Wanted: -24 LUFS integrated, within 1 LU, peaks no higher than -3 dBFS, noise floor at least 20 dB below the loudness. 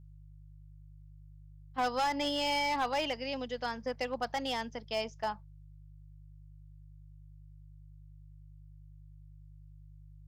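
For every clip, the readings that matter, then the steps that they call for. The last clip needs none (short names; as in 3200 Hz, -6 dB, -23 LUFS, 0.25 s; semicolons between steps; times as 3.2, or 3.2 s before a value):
clipped 0.6%; flat tops at -25.5 dBFS; hum 50 Hz; harmonics up to 150 Hz; hum level -51 dBFS; loudness -34.0 LUFS; peak -25.5 dBFS; loudness target -24.0 LUFS
-> clip repair -25.5 dBFS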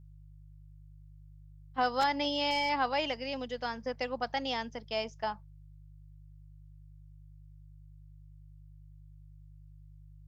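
clipped 0.0%; hum 50 Hz; harmonics up to 150 Hz; hum level -51 dBFS
-> de-hum 50 Hz, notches 3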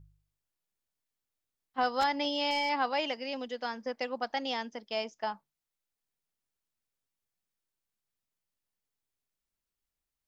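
hum none; loudness -32.5 LUFS; peak -16.5 dBFS; loudness target -24.0 LUFS
-> gain +8.5 dB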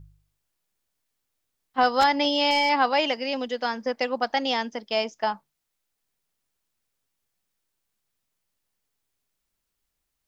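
loudness -24.0 LUFS; peak -8.0 dBFS; noise floor -80 dBFS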